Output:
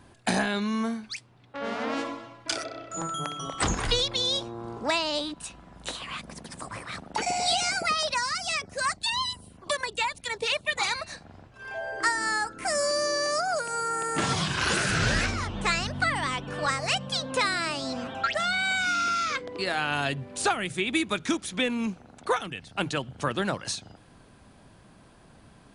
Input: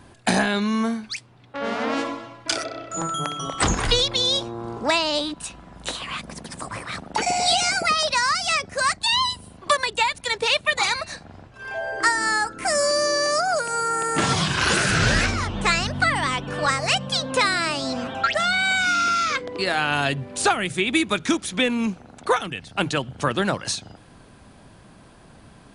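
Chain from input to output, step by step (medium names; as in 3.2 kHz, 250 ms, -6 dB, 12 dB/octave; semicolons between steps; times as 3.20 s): 8.14–10.79 s: LFO notch saw down 4.2 Hz 540–5200 Hz; trim -5.5 dB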